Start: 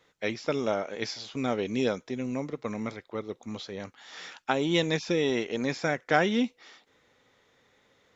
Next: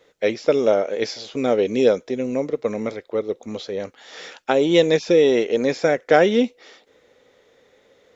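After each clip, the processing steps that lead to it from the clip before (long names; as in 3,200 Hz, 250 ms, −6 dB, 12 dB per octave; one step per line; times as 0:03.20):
octave-band graphic EQ 125/500/1,000 Hz −4/+10/−4 dB
level +5 dB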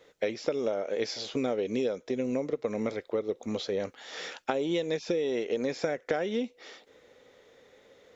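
downward compressor 16 to 1, threshold −24 dBFS, peak gain reduction 16 dB
level −1.5 dB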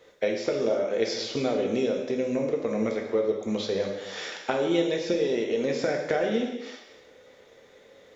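reverb whose tail is shaped and stops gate 380 ms falling, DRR 1 dB
level +1.5 dB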